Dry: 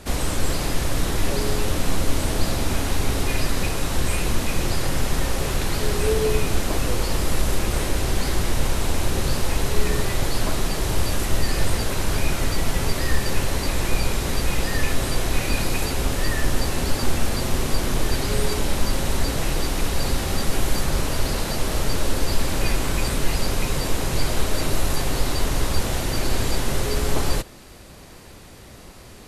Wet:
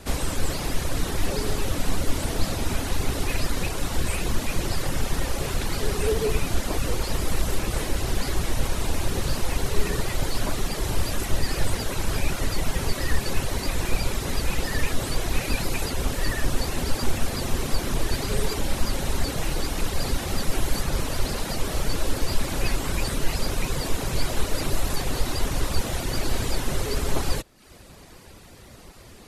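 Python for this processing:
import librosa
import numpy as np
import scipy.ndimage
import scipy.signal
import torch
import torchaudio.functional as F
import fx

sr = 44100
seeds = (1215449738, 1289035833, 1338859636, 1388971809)

y = fx.dereverb_blind(x, sr, rt60_s=0.63)
y = fx.vibrato(y, sr, rate_hz=14.0, depth_cents=74.0)
y = y * librosa.db_to_amplitude(-1.5)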